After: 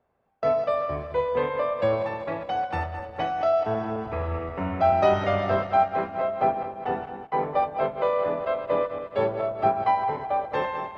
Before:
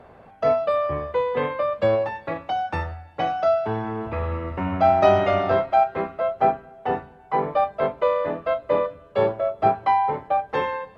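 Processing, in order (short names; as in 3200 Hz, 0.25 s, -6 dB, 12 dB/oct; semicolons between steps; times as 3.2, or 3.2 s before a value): regenerating reverse delay 0.107 s, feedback 71%, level -9 dB; narrowing echo 1.162 s, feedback 55%, band-pass 310 Hz, level -17 dB; gate with hold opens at -25 dBFS; gain -3.5 dB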